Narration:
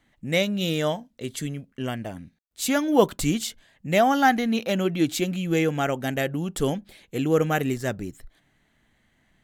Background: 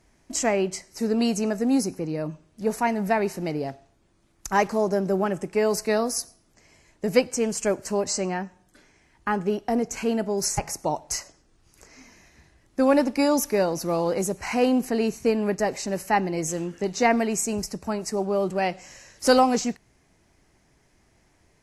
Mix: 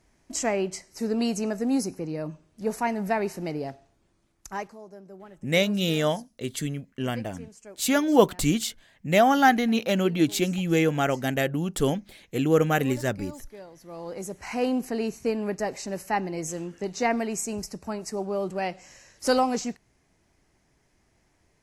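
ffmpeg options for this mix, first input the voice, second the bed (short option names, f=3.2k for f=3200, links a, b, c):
-filter_complex "[0:a]adelay=5200,volume=0.5dB[a];[1:a]volume=14.5dB,afade=t=out:st=4.07:d=0.7:silence=0.112202,afade=t=in:st=13.8:d=0.86:silence=0.133352[b];[a][b]amix=inputs=2:normalize=0"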